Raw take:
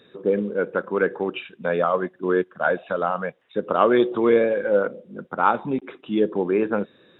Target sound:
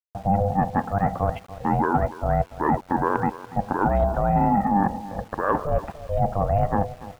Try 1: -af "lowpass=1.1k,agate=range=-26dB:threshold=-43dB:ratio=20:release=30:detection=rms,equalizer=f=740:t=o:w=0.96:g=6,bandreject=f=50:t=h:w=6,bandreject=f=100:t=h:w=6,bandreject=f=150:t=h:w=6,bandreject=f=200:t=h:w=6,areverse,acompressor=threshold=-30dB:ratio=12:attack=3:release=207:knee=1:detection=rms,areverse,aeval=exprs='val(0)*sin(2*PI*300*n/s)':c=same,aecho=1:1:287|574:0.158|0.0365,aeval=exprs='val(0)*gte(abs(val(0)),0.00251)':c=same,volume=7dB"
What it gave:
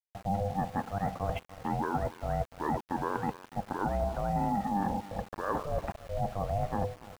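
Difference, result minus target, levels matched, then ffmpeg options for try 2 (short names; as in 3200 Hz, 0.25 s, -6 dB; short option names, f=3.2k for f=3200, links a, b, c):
compressor: peak gain reduction +10 dB
-af "lowpass=1.1k,agate=range=-26dB:threshold=-43dB:ratio=20:release=30:detection=rms,equalizer=f=740:t=o:w=0.96:g=6,bandreject=f=50:t=h:w=6,bandreject=f=100:t=h:w=6,bandreject=f=150:t=h:w=6,bandreject=f=200:t=h:w=6,areverse,acompressor=threshold=-19dB:ratio=12:attack=3:release=207:knee=1:detection=rms,areverse,aeval=exprs='val(0)*sin(2*PI*300*n/s)':c=same,aecho=1:1:287|574:0.158|0.0365,aeval=exprs='val(0)*gte(abs(val(0)),0.00251)':c=same,volume=7dB"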